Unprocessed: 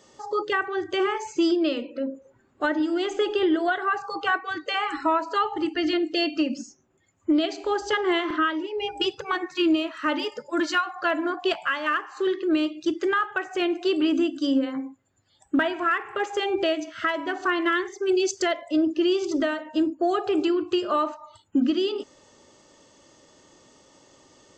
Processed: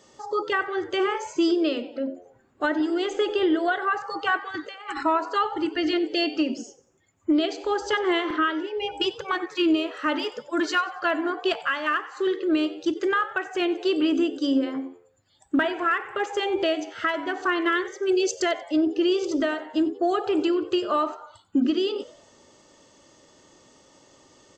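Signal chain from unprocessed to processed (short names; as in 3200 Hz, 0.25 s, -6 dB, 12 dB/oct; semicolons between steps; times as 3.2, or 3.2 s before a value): 4.48–5.03 negative-ratio compressor -33 dBFS, ratio -0.5; frequency-shifting echo 92 ms, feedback 43%, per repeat +86 Hz, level -19 dB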